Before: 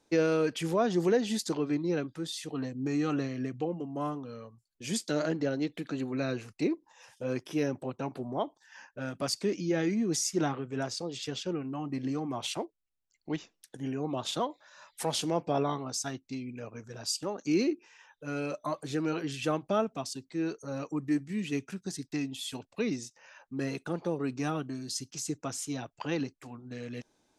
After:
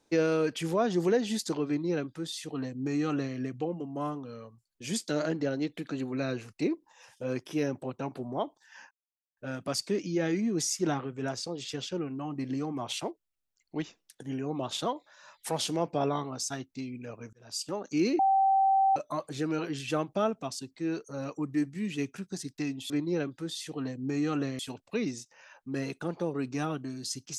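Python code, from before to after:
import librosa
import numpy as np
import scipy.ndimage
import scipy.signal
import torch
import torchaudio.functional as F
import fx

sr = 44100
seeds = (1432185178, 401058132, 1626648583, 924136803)

y = fx.edit(x, sr, fx.duplicate(start_s=1.67, length_s=1.69, to_s=22.44),
    fx.insert_silence(at_s=8.91, length_s=0.46),
    fx.fade_in_span(start_s=16.87, length_s=0.35),
    fx.bleep(start_s=17.73, length_s=0.77, hz=776.0, db=-20.5), tone=tone)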